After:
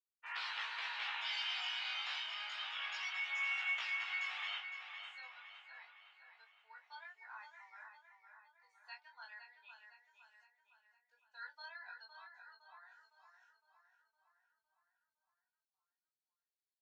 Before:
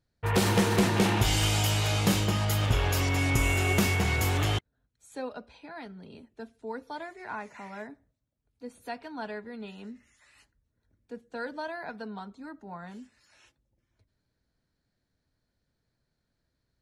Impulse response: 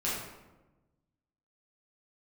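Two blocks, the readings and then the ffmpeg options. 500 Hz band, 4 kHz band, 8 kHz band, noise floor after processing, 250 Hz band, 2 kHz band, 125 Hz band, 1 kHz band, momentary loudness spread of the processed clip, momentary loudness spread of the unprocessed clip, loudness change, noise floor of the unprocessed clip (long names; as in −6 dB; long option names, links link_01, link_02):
−35.0 dB, −8.0 dB, −28.0 dB, below −85 dBFS, below −40 dB, −7.0 dB, below −40 dB, −15.0 dB, 21 LU, 21 LU, −12.5 dB, −80 dBFS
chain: -filter_complex "[0:a]lowpass=frequency=5900:width=0.5412,lowpass=frequency=5900:width=1.3066,acrossover=split=3100[link_01][link_02];[link_02]acompressor=threshold=-48dB:ratio=4:attack=1:release=60[link_03];[link_01][link_03]amix=inputs=2:normalize=0,afftdn=noise_reduction=18:noise_floor=-43,highpass=frequency=920:width=0.5412,highpass=frequency=920:width=1.3066,aderivative,flanger=delay=18:depth=5.4:speed=0.28,asplit=2[link_04][link_05];[link_05]adelay=18,volume=-5dB[link_06];[link_04][link_06]amix=inputs=2:normalize=0,asplit=2[link_07][link_08];[link_08]adelay=510,lowpass=frequency=4400:poles=1,volume=-7dB,asplit=2[link_09][link_10];[link_10]adelay=510,lowpass=frequency=4400:poles=1,volume=0.54,asplit=2[link_11][link_12];[link_12]adelay=510,lowpass=frequency=4400:poles=1,volume=0.54,asplit=2[link_13][link_14];[link_14]adelay=510,lowpass=frequency=4400:poles=1,volume=0.54,asplit=2[link_15][link_16];[link_16]adelay=510,lowpass=frequency=4400:poles=1,volume=0.54,asplit=2[link_17][link_18];[link_18]adelay=510,lowpass=frequency=4400:poles=1,volume=0.54,asplit=2[link_19][link_20];[link_20]adelay=510,lowpass=frequency=4400:poles=1,volume=0.54[link_21];[link_07][link_09][link_11][link_13][link_15][link_17][link_19][link_21]amix=inputs=8:normalize=0,volume=5.5dB"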